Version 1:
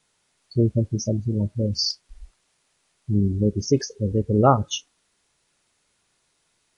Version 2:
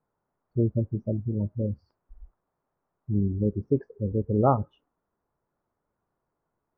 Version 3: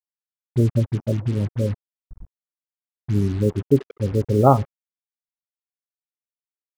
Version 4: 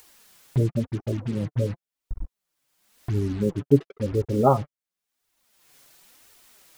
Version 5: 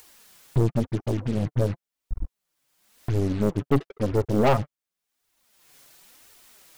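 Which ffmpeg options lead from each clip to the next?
-af "lowpass=f=1.2k:w=0.5412,lowpass=f=1.2k:w=1.3066,volume=-4.5dB"
-af "aecho=1:1:7.4:0.32,acrusher=bits=6:mix=0:aa=0.5,volume=5.5dB"
-af "acompressor=mode=upward:threshold=-17dB:ratio=2.5,flanger=delay=2.1:depth=5.5:regen=21:speed=0.95:shape=triangular"
-af "aeval=exprs='(tanh(11.2*val(0)+0.7)-tanh(0.7))/11.2':c=same,volume=5.5dB"

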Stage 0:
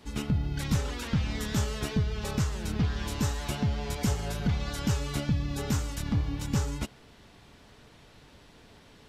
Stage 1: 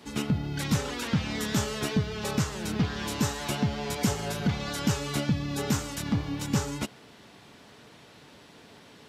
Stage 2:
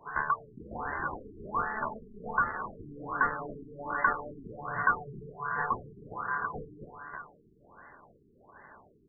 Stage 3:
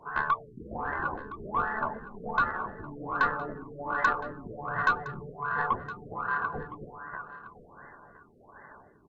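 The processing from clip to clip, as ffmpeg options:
-af "highpass=140,volume=4dB"
-filter_complex "[0:a]asplit=2[a][b];[b]adelay=319,lowpass=f=2k:p=1,volume=-10.5dB,asplit=2[c][d];[d]adelay=319,lowpass=f=2k:p=1,volume=0.38,asplit=2[e][f];[f]adelay=319,lowpass=f=2k:p=1,volume=0.38,asplit=2[g][h];[h]adelay=319,lowpass=f=2k:p=1,volume=0.38[i];[a][c][e][g][i]amix=inputs=5:normalize=0,aeval=exprs='val(0)*sin(2*PI*1300*n/s)':c=same,afftfilt=real='re*lt(b*sr/1024,420*pow(2100/420,0.5+0.5*sin(2*PI*1.3*pts/sr)))':imag='im*lt(b*sr/1024,420*pow(2100/420,0.5+0.5*sin(2*PI*1.3*pts/sr)))':win_size=1024:overlap=0.75,volume=3dB"
-af "aeval=exprs='0.299*(cos(1*acos(clip(val(0)/0.299,-1,1)))-cos(1*PI/2))+0.0133*(cos(4*acos(clip(val(0)/0.299,-1,1)))-cos(4*PI/2))+0.0237*(cos(5*acos(clip(val(0)/0.299,-1,1)))-cos(5*PI/2))':c=same,aecho=1:1:1014:0.158" -ar 32000 -c:a libvorbis -b:a 48k

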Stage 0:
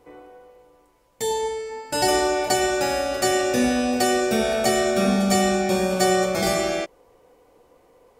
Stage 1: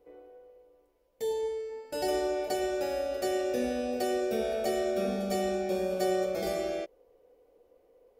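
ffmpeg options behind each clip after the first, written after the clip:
-af "equalizer=f=125:t=o:w=1:g=-10,equalizer=f=250:t=o:w=1:g=-3,equalizer=f=500:t=o:w=1:g=7,equalizer=f=1k:t=o:w=1:g=-10,equalizer=f=2k:t=o:w=1:g=-4,equalizer=f=4k:t=o:w=1:g=-3,equalizer=f=8k:t=o:w=1:g=-10,volume=-8.5dB"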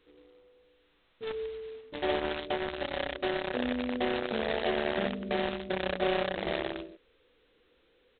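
-filter_complex "[0:a]acrossover=split=410[a][b];[a]aecho=1:1:109:0.501[c];[b]acrusher=bits=4:mix=0:aa=0.000001[d];[c][d]amix=inputs=2:normalize=0" -ar 8000 -c:a adpcm_g726 -b:a 16k

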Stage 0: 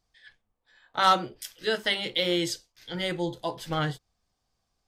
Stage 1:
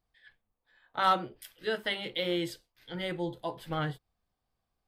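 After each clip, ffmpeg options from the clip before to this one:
-af "equalizer=f=6.2k:t=o:w=1:g=-13,volume=-4dB"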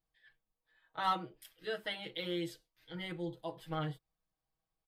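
-af "aecho=1:1:6.3:0.78,volume=-9dB"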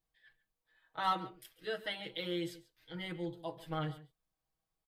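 -filter_complex "[0:a]asplit=2[a][b];[b]adelay=139.9,volume=-17dB,highshelf=f=4k:g=-3.15[c];[a][c]amix=inputs=2:normalize=0"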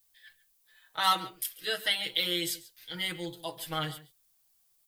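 -af "crystalizer=i=10:c=0"

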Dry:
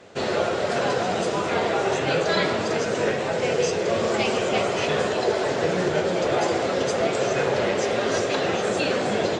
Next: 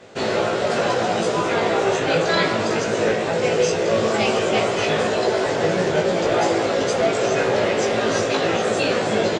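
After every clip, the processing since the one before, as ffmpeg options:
-filter_complex "[0:a]asplit=2[a][b];[b]adelay=18,volume=-3dB[c];[a][c]amix=inputs=2:normalize=0,volume=1.5dB"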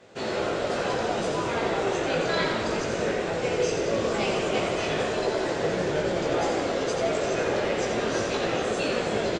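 -filter_complex "[0:a]asplit=9[a][b][c][d][e][f][g][h][i];[b]adelay=87,afreqshift=-40,volume=-5.5dB[j];[c]adelay=174,afreqshift=-80,volume=-10.2dB[k];[d]adelay=261,afreqshift=-120,volume=-15dB[l];[e]adelay=348,afreqshift=-160,volume=-19.7dB[m];[f]adelay=435,afreqshift=-200,volume=-24.4dB[n];[g]adelay=522,afreqshift=-240,volume=-29.2dB[o];[h]adelay=609,afreqshift=-280,volume=-33.9dB[p];[i]adelay=696,afreqshift=-320,volume=-38.6dB[q];[a][j][k][l][m][n][o][p][q]amix=inputs=9:normalize=0,volume=-8dB"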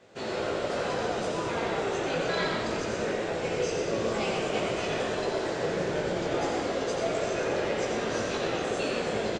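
-af "aecho=1:1:122:0.473,volume=-4dB"

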